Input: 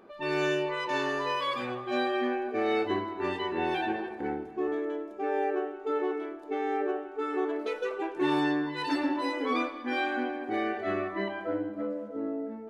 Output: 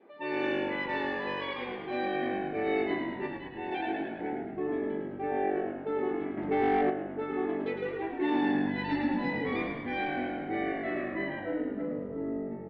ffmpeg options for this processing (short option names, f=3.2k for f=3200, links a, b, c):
-filter_complex "[0:a]adynamicequalizer=threshold=0.00316:dfrequency=1100:dqfactor=3.2:tfrequency=1100:tqfactor=3.2:attack=5:release=100:ratio=0.375:range=3:mode=cutabove:tftype=bell,asplit=3[a][b][c];[a]afade=t=out:st=3.26:d=0.02[d];[b]agate=range=-33dB:threshold=-24dB:ratio=3:detection=peak,afade=t=in:st=3.26:d=0.02,afade=t=out:st=3.71:d=0.02[e];[c]afade=t=in:st=3.71:d=0.02[f];[d][e][f]amix=inputs=3:normalize=0,highpass=200,equalizer=f=300:t=q:w=4:g=6,equalizer=f=460:t=q:w=4:g=4,equalizer=f=840:t=q:w=4:g=6,equalizer=f=1.4k:t=q:w=4:g=-4,equalizer=f=2k:t=q:w=4:g=9,lowpass=f=3.9k:w=0.5412,lowpass=f=3.9k:w=1.3066,asplit=8[g][h][i][j][k][l][m][n];[h]adelay=107,afreqshift=-48,volume=-5.5dB[o];[i]adelay=214,afreqshift=-96,volume=-10.5dB[p];[j]adelay=321,afreqshift=-144,volume=-15.6dB[q];[k]adelay=428,afreqshift=-192,volume=-20.6dB[r];[l]adelay=535,afreqshift=-240,volume=-25.6dB[s];[m]adelay=642,afreqshift=-288,volume=-30.7dB[t];[n]adelay=749,afreqshift=-336,volume=-35.7dB[u];[g][o][p][q][r][s][t][u]amix=inputs=8:normalize=0,asettb=1/sr,asplit=3[v][w][x];[v]atrim=end=6.374[y];[w]atrim=start=6.37:end=6.9,asetpts=PTS-STARTPTS,afade=t=in:d=0.004:c=qsin,afade=t=out:st=0.526:d=0.004:c=qsin,aeval=exprs='0.2*sin(PI/2*1.41*val(0)/0.2)':c=same[z];[x]atrim=start=6.896[aa];[y][z]acrossfade=d=0.004:c1=hsin:c2=qsin[ab];[ab][aa]acrossfade=d=0.004:c1=qsin:c2=hsin,volume=-6dB"